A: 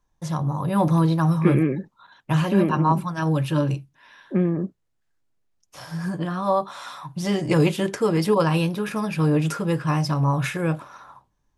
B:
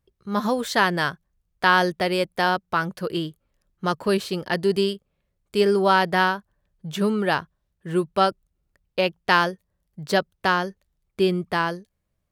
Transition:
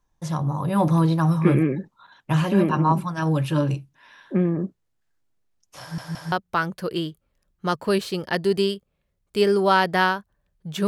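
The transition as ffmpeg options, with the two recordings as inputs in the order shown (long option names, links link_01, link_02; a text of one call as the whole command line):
ffmpeg -i cue0.wav -i cue1.wav -filter_complex "[0:a]apad=whole_dur=10.87,atrim=end=10.87,asplit=3[link_01][link_02][link_03];[link_01]atrim=end=5.982[link_04];[link_02]atrim=start=5.808:end=5.982[link_05];[link_03]atrim=start=5.808:end=5.982[link_06];[1:a]atrim=start=2.508:end=7.06[link_07];[link_04][link_05]acrossfade=duration=0.004:curve1=hsin:curve2=hsin[link_08];[link_08][link_06]acrossfade=duration=0.004:curve1=hsin:curve2=hsin[link_09];[link_09][link_07]acrossfade=duration=0.004:curve1=hsin:curve2=hsin" out.wav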